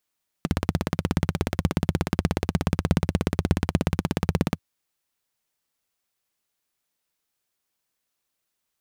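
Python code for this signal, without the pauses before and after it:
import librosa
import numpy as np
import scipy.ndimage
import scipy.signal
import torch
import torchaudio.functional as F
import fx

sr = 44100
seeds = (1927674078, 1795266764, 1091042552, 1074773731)

y = fx.engine_single(sr, seeds[0], length_s=4.14, rpm=2000, resonances_hz=(88.0, 160.0))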